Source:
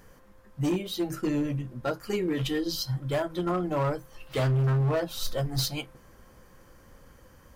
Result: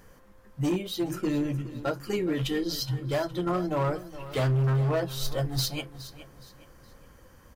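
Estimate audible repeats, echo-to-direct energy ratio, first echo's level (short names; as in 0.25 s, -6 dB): 3, -14.5 dB, -15.0 dB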